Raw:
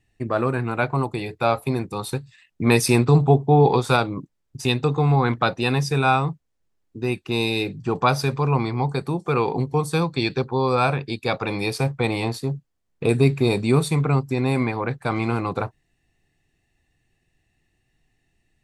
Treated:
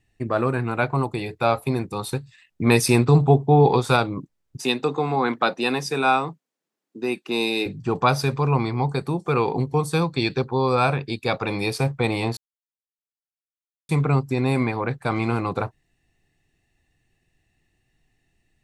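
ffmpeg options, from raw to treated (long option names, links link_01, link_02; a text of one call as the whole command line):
ffmpeg -i in.wav -filter_complex "[0:a]asettb=1/sr,asplit=3[link_01][link_02][link_03];[link_01]atrim=end=4.574[link_04];[link_02]atrim=start=4.57:end=7.66,asetpts=PTS-STARTPTS,afade=type=in:duration=0.004:curve=qsin,afade=type=out:start_time=3.086:duration=0.004:curve=qsin,highpass=frequency=200:width=0.5412,highpass=frequency=200:width=1.3066[link_05];[link_03]atrim=start=7.656[link_06];[link_04][link_05]acrossfade=duration=0.004:curve1=hsin:curve2=qsin[link_07];[link_07][link_06]acrossfade=duration=0.004:curve1=qsin:curve2=hsin,asplit=3[link_08][link_09][link_10];[link_08]atrim=end=12.37,asetpts=PTS-STARTPTS,afade=type=out:start_time=12.366:duration=0.004:curve=hsin[link_11];[link_09]atrim=start=12.37:end=13.89,asetpts=PTS-STARTPTS,volume=0[link_12];[link_10]atrim=start=13.89,asetpts=PTS-STARTPTS,afade=type=in:duration=0.004:curve=hsin[link_13];[link_11][link_12][link_13]concat=n=3:v=0:a=1" out.wav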